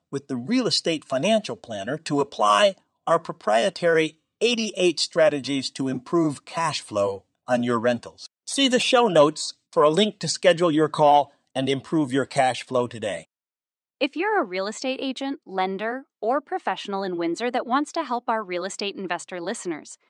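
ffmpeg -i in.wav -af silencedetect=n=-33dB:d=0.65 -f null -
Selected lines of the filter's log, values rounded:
silence_start: 13.20
silence_end: 14.01 | silence_duration: 0.81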